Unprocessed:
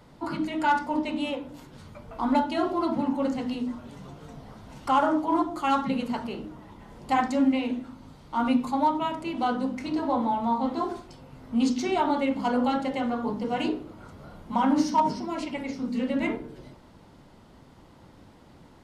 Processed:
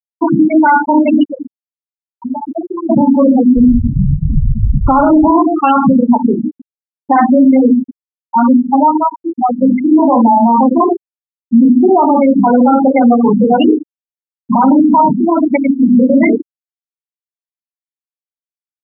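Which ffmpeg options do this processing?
-filter_complex "[0:a]asettb=1/sr,asplit=3[s0][s1][s2];[s0]atrim=end=1.234[s3];[s1]atrim=start=1.23:end=2.9,asetpts=PTS-STARTPTS,afade=t=in:d=0.004:c=qsin,afade=t=out:st=1.666:d=0.004:c=qsin,acompressor=threshold=0.02:ratio=20:attack=3.2:release=140:knee=1:detection=peak[s4];[s2]atrim=start=2.896[s5];[s3][s4]acrossfade=d=0.004:c1=hsin:c2=qsin[s6];[s6][s5]acrossfade=d=0.004:c1=qsin:c2=hsin,asplit=3[s7][s8][s9];[s7]afade=t=out:st=3.56:d=0.02[s10];[s8]aemphasis=mode=reproduction:type=riaa,afade=t=in:st=3.56:d=0.02,afade=t=out:st=5.3:d=0.02[s11];[s9]afade=t=in:st=5.3:d=0.02[s12];[s10][s11][s12]amix=inputs=3:normalize=0,asplit=2[s13][s14];[s14]afade=t=in:st=5.81:d=0.01,afade=t=out:st=6.22:d=0.01,aecho=0:1:350|700|1050|1400|1750|2100:0.251189|0.138154|0.0759846|0.0417915|0.0229853|0.0126419[s15];[s13][s15]amix=inputs=2:normalize=0,asettb=1/sr,asplit=3[s16][s17][s18];[s16]atrim=end=10.584[s19];[s17]atrim=start=10.58:end=12.94,asetpts=PTS-STARTPTS,afade=t=in:d=0.004:c=qsin,afade=t=out:st=2.356:d=0.004:c=qsin,lowpass=2000[s20];[s18]atrim=start=12.936[s21];[s19][s20]acrossfade=d=0.004:c1=hsin:c2=qsin[s22];[s22][s21]acrossfade=d=0.004:c1=qsin:c2=hsin,asplit=2[s23][s24];[s23]atrim=end=9.62,asetpts=PTS-STARTPTS,afade=t=out:st=7.44:d=2.18:silence=0.334965[s25];[s24]atrim=start=9.62,asetpts=PTS-STARTPTS,afade=t=in:d=0.004:c=hsin:silence=0.334965[s26];[s25][s26]concat=n=2:v=0:a=1,afftfilt=real='re*gte(hypot(re,im),0.112)':imag='im*gte(hypot(re,im),0.112)':win_size=1024:overlap=0.75,alimiter=level_in=15.8:limit=0.891:release=50:level=0:latency=1,volume=0.891"

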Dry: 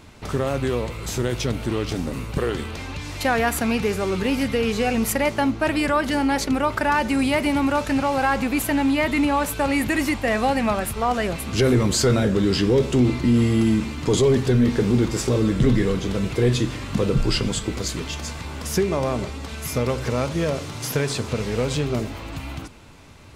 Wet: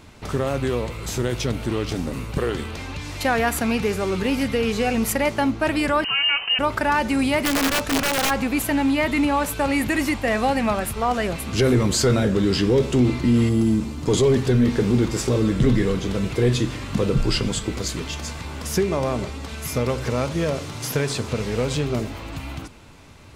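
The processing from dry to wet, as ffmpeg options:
-filter_complex "[0:a]asettb=1/sr,asplit=3[s0][s1][s2];[s0]atrim=end=6.044[s3];[s1]atrim=start=6.04:end=6.59,asetpts=PTS-STARTPTS,afade=t=in:d=0.004:c=qsin,afade=t=out:st=0.546:d=0.004:c=qsin,lowpass=f=2600:t=q:w=0.5098,lowpass=f=2600:t=q:w=0.6013,lowpass=f=2600:t=q:w=0.9,lowpass=f=2600:t=q:w=2.563,afreqshift=-3100[s4];[s2]atrim=start=6.586[s5];[s3][s4]acrossfade=d=0.004:c1=hsin:c2=qsin[s6];[s6][s5]acrossfade=d=0.004:c1=qsin:c2=hsin,asplit=3[s7][s8][s9];[s7]afade=t=out:st=7.43:d=0.02[s10];[s8]aeval=exprs='(mod(5.31*val(0)+1,2)-1)/5.31':c=same,afade=t=in:st=7.43:d=0.02,afade=t=out:st=8.29:d=0.02[s11];[s9]afade=t=in:st=8.29:d=0.02[s12];[s10][s11][s12]amix=inputs=3:normalize=0,asettb=1/sr,asplit=3[s13][s14][s15];[s13]atrim=end=13.494[s16];[s14]atrim=start=13.49:end=14.08,asetpts=PTS-STARTPTS,afade=t=in:d=0.004:c=qsin,afade=t=out:st=0.586:d=0.004:c=qsin,equalizer=f=2200:w=0.68:g=-9[s17];[s15]atrim=start=14.076[s18];[s16][s17]acrossfade=d=0.004:c1=hsin:c2=qsin[s19];[s19][s18]acrossfade=d=0.004:c1=qsin:c2=hsin"

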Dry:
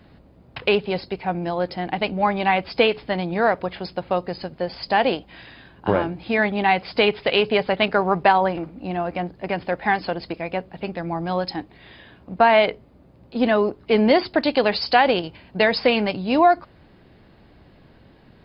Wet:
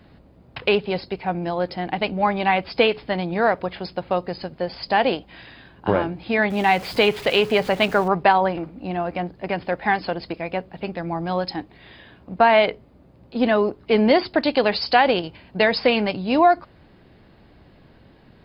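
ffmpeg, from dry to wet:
-filter_complex "[0:a]asettb=1/sr,asplit=3[s0][s1][s2];[s0]atrim=end=6.504[s3];[s1]atrim=start=6.5:end=8.08,asetpts=PTS-STARTPTS,afade=t=in:d=0.004:c=qsin,afade=t=out:st=1.576:d=0.004:c=qsin,aeval=exprs='val(0)+0.5*0.0224*sgn(val(0))':c=same[s4];[s2]atrim=start=8.076[s5];[s3][s4]acrossfade=d=0.004:c1=hsin:c2=qsin[s6];[s6][s5]acrossfade=d=0.004:c1=qsin:c2=hsin"

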